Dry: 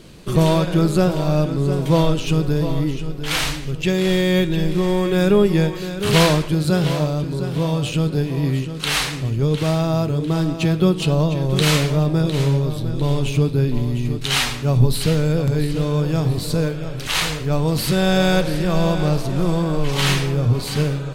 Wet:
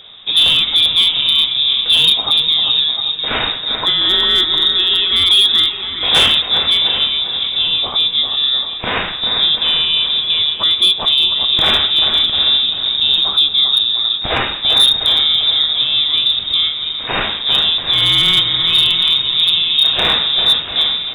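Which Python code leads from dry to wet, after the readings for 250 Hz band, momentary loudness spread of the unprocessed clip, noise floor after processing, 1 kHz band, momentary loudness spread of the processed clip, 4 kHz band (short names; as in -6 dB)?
-15.0 dB, 6 LU, -24 dBFS, +1.5 dB, 6 LU, +19.0 dB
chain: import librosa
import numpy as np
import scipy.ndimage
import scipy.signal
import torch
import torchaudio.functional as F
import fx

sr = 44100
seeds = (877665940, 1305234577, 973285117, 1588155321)

y = fx.echo_wet_highpass(x, sr, ms=396, feedback_pct=47, hz=1500.0, wet_db=-6.5)
y = fx.freq_invert(y, sr, carrier_hz=3700)
y = np.clip(10.0 ** (8.5 / 20.0) * y, -1.0, 1.0) / 10.0 ** (8.5 / 20.0)
y = F.gain(torch.from_numpy(y), 3.5).numpy()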